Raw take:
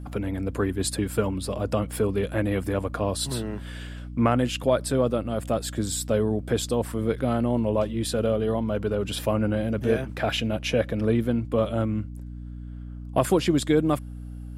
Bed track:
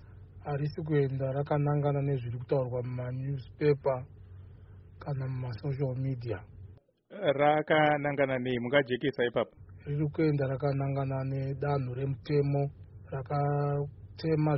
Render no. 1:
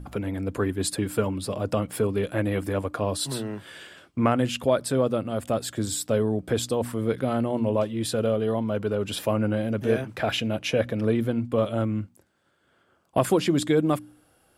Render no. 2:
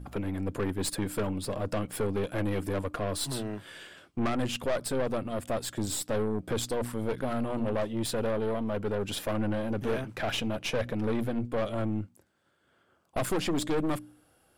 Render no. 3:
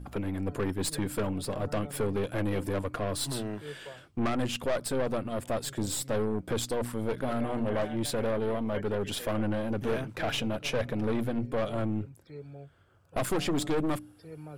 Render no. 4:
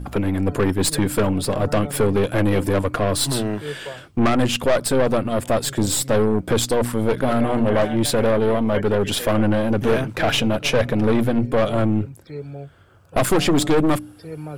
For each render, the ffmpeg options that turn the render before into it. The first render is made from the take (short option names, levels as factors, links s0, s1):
-af "bandreject=f=60:t=h:w=4,bandreject=f=120:t=h:w=4,bandreject=f=180:t=h:w=4,bandreject=f=240:t=h:w=4,bandreject=f=300:t=h:w=4"
-af "aeval=exprs='(tanh(17.8*val(0)+0.6)-tanh(0.6))/17.8':c=same"
-filter_complex "[1:a]volume=0.141[s0];[0:a][s0]amix=inputs=2:normalize=0"
-af "volume=3.76"